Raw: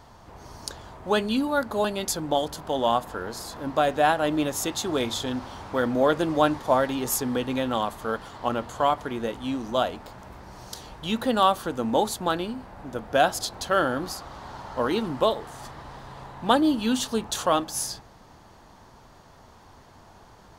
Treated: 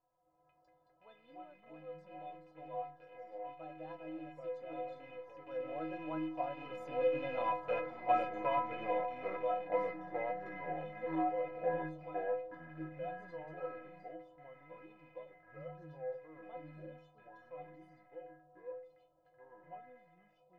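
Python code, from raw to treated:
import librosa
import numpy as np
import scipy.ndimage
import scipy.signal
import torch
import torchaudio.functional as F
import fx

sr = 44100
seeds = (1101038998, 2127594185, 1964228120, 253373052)

y = fx.rattle_buzz(x, sr, strikes_db=-38.0, level_db=-16.0)
y = fx.doppler_pass(y, sr, speed_mps=16, closest_m=6.9, pass_at_s=7.92)
y = scipy.signal.sosfilt(scipy.signal.butter(2, 1700.0, 'lowpass', fs=sr, output='sos'), y)
y = fx.echo_pitch(y, sr, ms=99, semitones=-3, count=2, db_per_echo=-3.0)
y = fx.peak_eq(y, sr, hz=600.0, db=13.5, octaves=0.67)
y = fx.hum_notches(y, sr, base_hz=50, count=3)
y = fx.stiff_resonator(y, sr, f0_hz=150.0, decay_s=0.65, stiffness=0.03)
y = F.gain(torch.from_numpy(y), 6.0).numpy()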